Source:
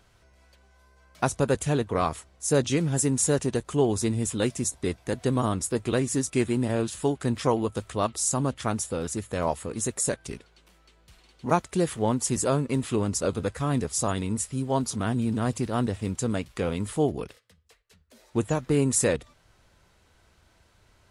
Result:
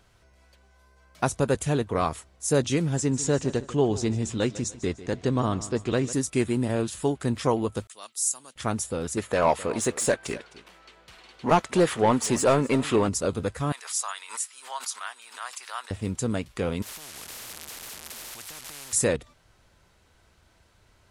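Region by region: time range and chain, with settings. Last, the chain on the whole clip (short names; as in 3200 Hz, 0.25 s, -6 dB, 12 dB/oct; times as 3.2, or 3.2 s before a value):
2.96–6.13 LPF 7100 Hz 24 dB/oct + feedback echo 0.149 s, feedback 37%, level -16 dB
7.87–8.56 expander -43 dBFS + HPF 130 Hz 24 dB/oct + differentiator
9.17–13.09 overdrive pedal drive 18 dB, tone 2400 Hz, clips at -8.5 dBFS + echo 0.259 s -19 dB
13.72–15.91 HPF 1000 Hz 24 dB/oct + backwards sustainer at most 140 dB/s
16.82–18.93 delta modulation 64 kbps, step -38 dBFS + compressor 2:1, threshold -38 dBFS + spectral compressor 10:1
whole clip: dry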